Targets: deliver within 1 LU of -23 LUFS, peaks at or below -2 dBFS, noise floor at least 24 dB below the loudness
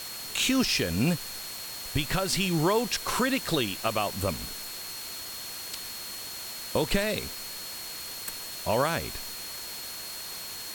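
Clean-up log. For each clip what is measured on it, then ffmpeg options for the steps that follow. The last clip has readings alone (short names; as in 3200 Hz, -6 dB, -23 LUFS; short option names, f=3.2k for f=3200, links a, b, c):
steady tone 4300 Hz; tone level -41 dBFS; noise floor -39 dBFS; noise floor target -54 dBFS; loudness -29.5 LUFS; peak -13.5 dBFS; loudness target -23.0 LUFS
-> -af "bandreject=f=4.3k:w=30"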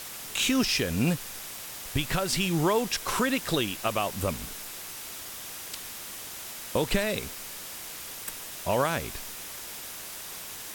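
steady tone none; noise floor -40 dBFS; noise floor target -54 dBFS
-> -af "afftdn=nr=14:nf=-40"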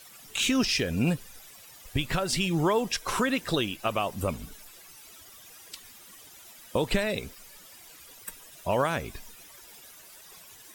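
noise floor -51 dBFS; noise floor target -52 dBFS
-> -af "afftdn=nr=6:nf=-51"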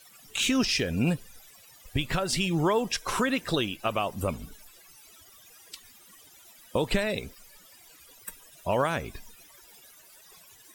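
noise floor -55 dBFS; loudness -28.0 LUFS; peak -14.0 dBFS; loudness target -23.0 LUFS
-> -af "volume=5dB"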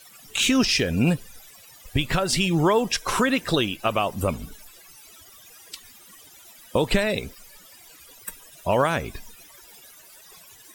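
loudness -23.0 LUFS; peak -9.0 dBFS; noise floor -50 dBFS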